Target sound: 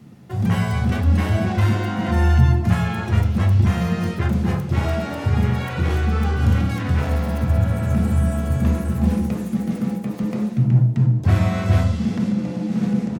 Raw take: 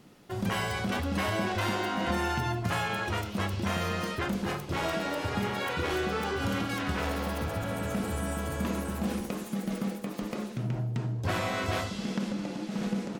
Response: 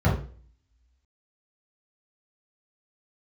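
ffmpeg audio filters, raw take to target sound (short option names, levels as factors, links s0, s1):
-filter_complex "[0:a]aecho=1:1:392:0.0944,asplit=2[s0][s1];[1:a]atrim=start_sample=2205,asetrate=57330,aresample=44100[s2];[s1][s2]afir=irnorm=-1:irlink=0,volume=0.158[s3];[s0][s3]amix=inputs=2:normalize=0"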